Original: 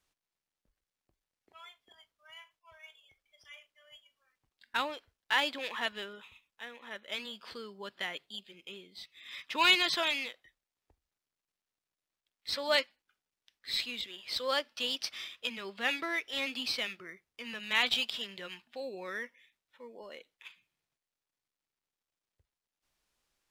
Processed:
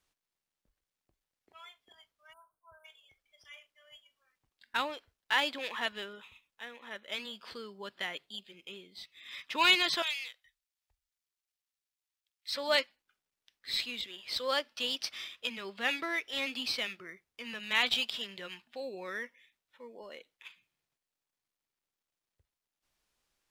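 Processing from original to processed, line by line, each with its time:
2.33–2.85 s: spectral selection erased 1.6–8.2 kHz
10.02–12.55 s: amplifier tone stack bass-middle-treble 10-0-10

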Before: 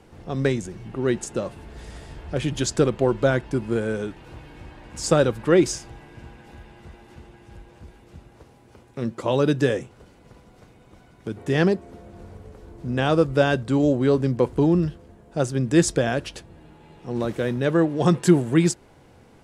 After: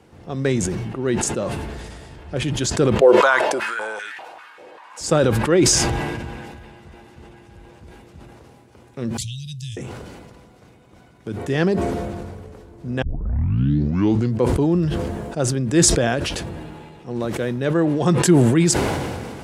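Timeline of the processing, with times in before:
3.01–5.01 s: step-sequenced high-pass 5.1 Hz 490–1800 Hz
9.17–9.77 s: inverse Chebyshev band-stop 330–1300 Hz, stop band 60 dB
13.02 s: tape start 1.39 s
whole clip: high-pass 56 Hz; decay stretcher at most 27 dB/s

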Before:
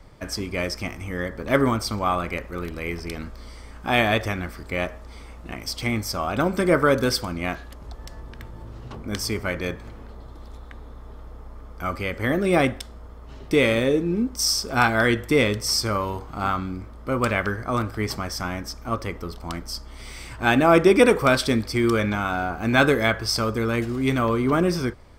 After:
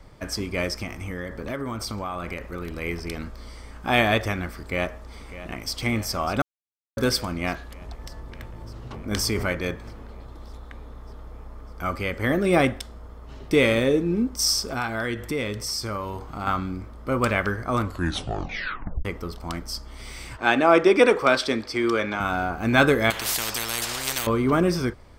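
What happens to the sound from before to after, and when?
0.83–2.82 s: compression, threshold -27 dBFS
4.53–5.73 s: echo throw 600 ms, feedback 75%, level -14 dB
6.42–6.97 s: mute
9.11–9.53 s: level flattener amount 70%
14.73–16.47 s: compression 2:1, threshold -30 dBFS
17.79 s: tape stop 1.26 s
20.37–22.20 s: three-band isolator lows -14 dB, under 260 Hz, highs -13 dB, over 6.9 kHz
23.10–24.27 s: spectrum-flattening compressor 10:1

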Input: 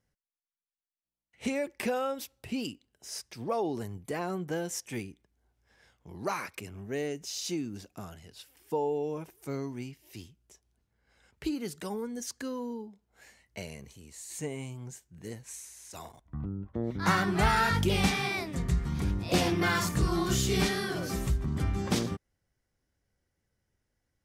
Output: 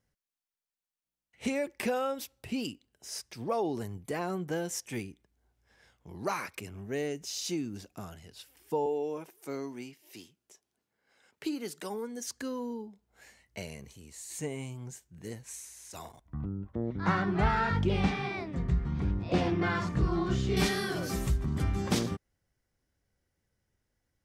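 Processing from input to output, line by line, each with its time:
8.86–12.26 s: high-pass 250 Hz
16.75–20.57 s: tape spacing loss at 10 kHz 25 dB

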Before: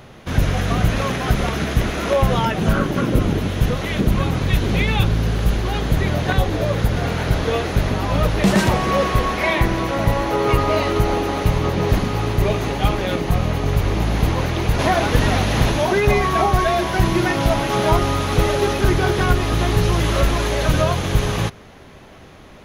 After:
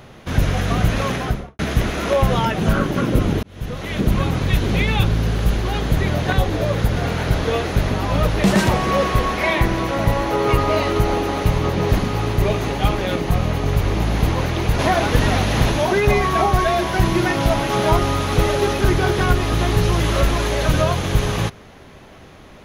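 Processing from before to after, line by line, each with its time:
1.14–1.59 s: studio fade out
3.43–4.09 s: fade in

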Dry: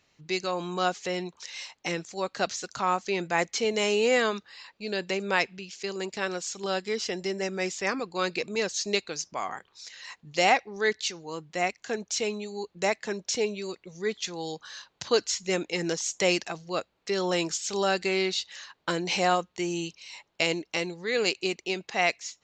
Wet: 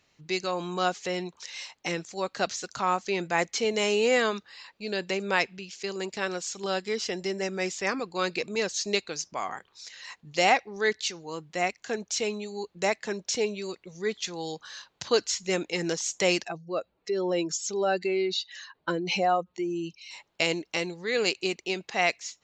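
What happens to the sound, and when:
16.44–20.11 s: spectral contrast enhancement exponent 1.7

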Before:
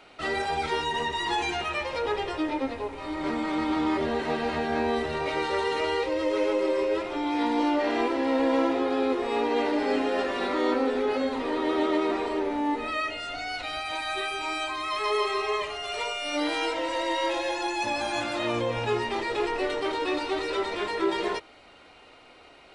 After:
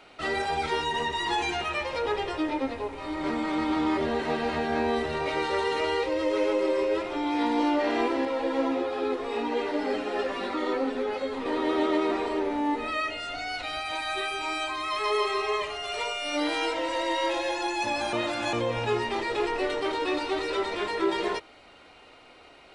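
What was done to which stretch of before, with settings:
8.25–11.46 s: three-phase chorus
18.13–18.53 s: reverse

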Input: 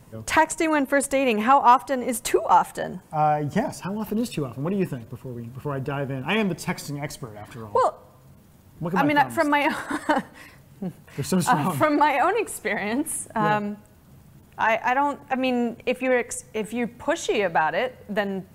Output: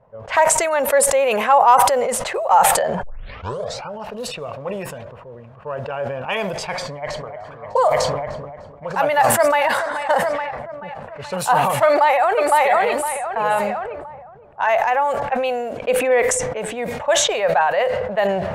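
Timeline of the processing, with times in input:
3.03 s: tape start 0.87 s
6.81–7.25 s: echo throw 300 ms, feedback 85%, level -7.5 dB
9.15–9.64 s: echo throw 430 ms, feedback 70%, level -11 dB
11.86–12.65 s: echo throw 510 ms, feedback 35%, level 0 dB
15.72–16.91 s: peaking EQ 300 Hz +14.5 dB 0.43 oct
whole clip: level-controlled noise filter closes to 930 Hz, open at -19 dBFS; resonant low shelf 420 Hz -9.5 dB, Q 3; decay stretcher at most 32 dB/s

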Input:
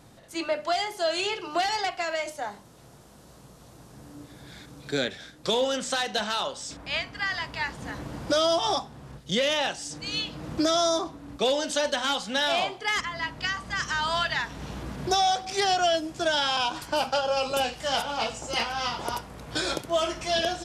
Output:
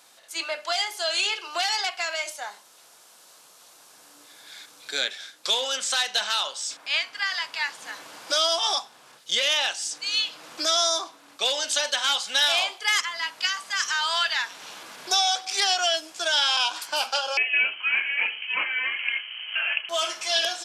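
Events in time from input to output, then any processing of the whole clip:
12.27–13.89 s: treble shelf 7.8 kHz +6.5 dB
17.37–19.89 s: frequency inversion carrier 3.1 kHz
whole clip: Bessel high-pass 590 Hz, order 2; tilt shelf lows -7 dB; band-stop 1.9 kHz, Q 18

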